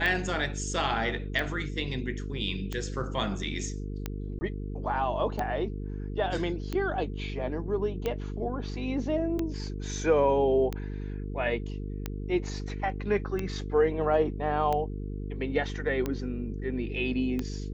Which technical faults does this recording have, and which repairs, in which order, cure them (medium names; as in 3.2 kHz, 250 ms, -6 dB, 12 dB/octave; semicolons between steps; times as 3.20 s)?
buzz 50 Hz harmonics 9 -35 dBFS
tick 45 rpm -17 dBFS
4.39–4.41 s: dropout 20 ms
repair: de-click; de-hum 50 Hz, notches 9; interpolate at 4.39 s, 20 ms